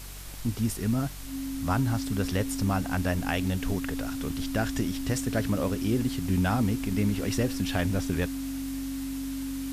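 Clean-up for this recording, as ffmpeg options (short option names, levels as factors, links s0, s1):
-af "adeclick=t=4,bandreject=f=47.1:t=h:w=4,bandreject=f=94.2:t=h:w=4,bandreject=f=141.3:t=h:w=4,bandreject=f=188.4:t=h:w=4,bandreject=f=270:w=30,afwtdn=0.0063"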